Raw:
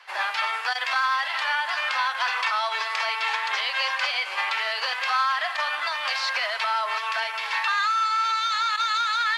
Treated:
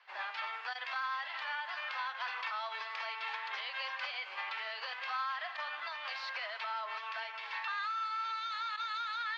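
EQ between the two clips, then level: band-pass filter 4.8 kHz, Q 0.89; distance through air 97 m; tilt EQ -6 dB/octave; 0.0 dB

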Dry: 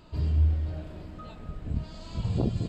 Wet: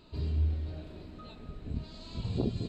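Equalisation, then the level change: graphic EQ with 31 bands 250 Hz +6 dB, 400 Hz +7 dB, 2.5 kHz +4 dB, 4 kHz +11 dB; -6.0 dB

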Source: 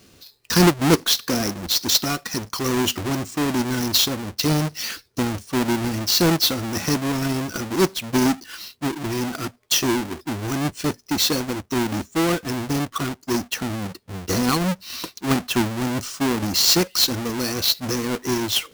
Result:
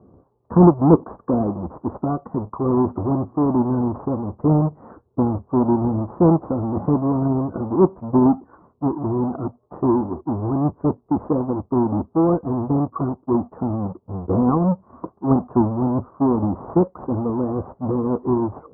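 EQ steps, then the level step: high-pass 45 Hz; steep low-pass 1.1 kHz 48 dB/octave; distance through air 210 m; +4.5 dB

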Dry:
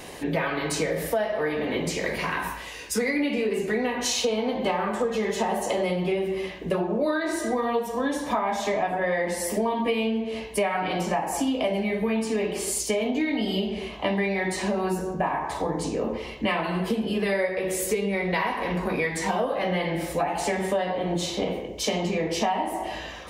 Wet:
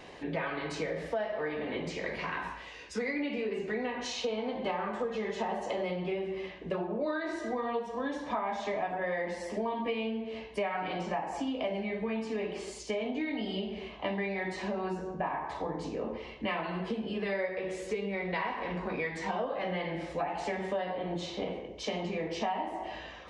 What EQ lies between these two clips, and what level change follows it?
Gaussian low-pass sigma 1.6 samples; bass shelf 420 Hz -3 dB; -6.5 dB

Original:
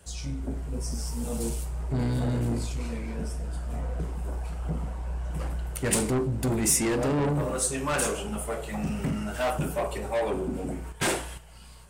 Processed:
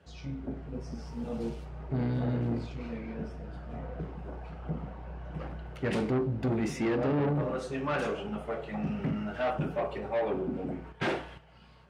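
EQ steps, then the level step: high-pass 100 Hz 12 dB/octave; distance through air 270 m; band-stop 1 kHz, Q 17; -1.5 dB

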